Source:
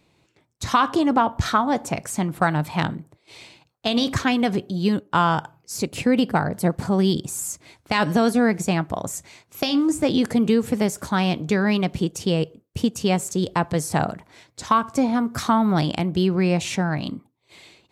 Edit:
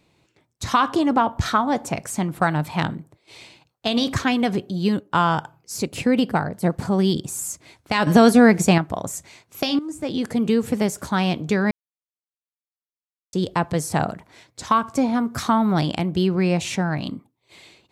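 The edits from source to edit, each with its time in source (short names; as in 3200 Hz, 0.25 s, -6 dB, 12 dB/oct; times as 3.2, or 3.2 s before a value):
6.33–6.62 fade out, to -7 dB
8.07–8.78 gain +6 dB
9.79–10.61 fade in linear, from -14 dB
11.71–13.33 mute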